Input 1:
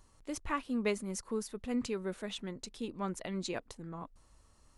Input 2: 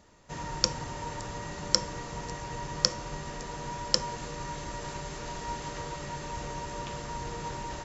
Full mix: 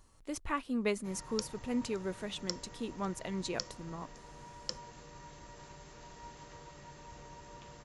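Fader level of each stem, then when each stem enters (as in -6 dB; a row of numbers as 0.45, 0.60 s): 0.0, -14.0 dB; 0.00, 0.75 s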